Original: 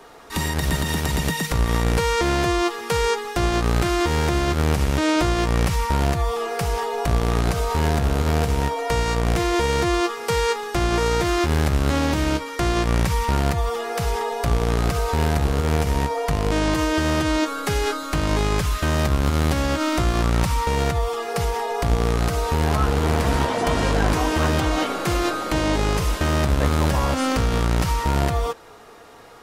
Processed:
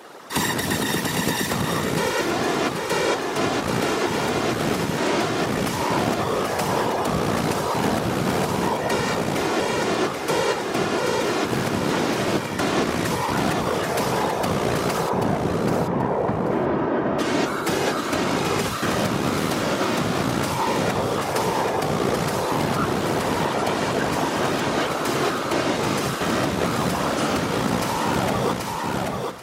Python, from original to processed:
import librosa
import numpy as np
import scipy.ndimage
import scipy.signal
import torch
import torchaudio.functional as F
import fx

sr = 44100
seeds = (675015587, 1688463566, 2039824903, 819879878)

y = fx.lowpass(x, sr, hz=1300.0, slope=12, at=(15.09, 17.19))
y = fx.whisperise(y, sr, seeds[0])
y = scipy.signal.sosfilt(scipy.signal.butter(2, 180.0, 'highpass', fs=sr, output='sos'), y)
y = fx.echo_feedback(y, sr, ms=783, feedback_pct=20, wet_db=-6)
y = fx.rider(y, sr, range_db=4, speed_s=0.5)